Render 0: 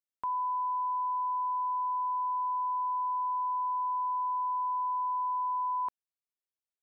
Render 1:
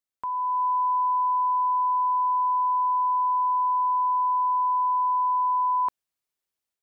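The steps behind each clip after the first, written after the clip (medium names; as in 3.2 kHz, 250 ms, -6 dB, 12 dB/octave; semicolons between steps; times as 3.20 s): level rider gain up to 6 dB; trim +2 dB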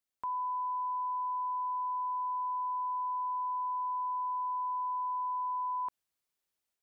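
peak limiter -31 dBFS, peak gain reduction 11 dB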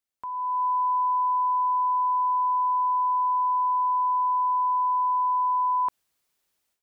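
level rider gain up to 10.5 dB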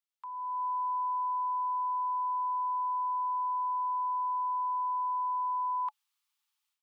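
rippled Chebyshev high-pass 830 Hz, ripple 6 dB; trim -2.5 dB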